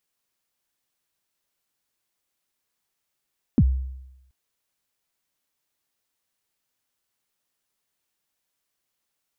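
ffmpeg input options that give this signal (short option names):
-f lavfi -i "aevalsrc='0.282*pow(10,-3*t/0.91)*sin(2*PI*(300*0.052/log(65/300)*(exp(log(65/300)*min(t,0.052)/0.052)-1)+65*max(t-0.052,0)))':d=0.73:s=44100"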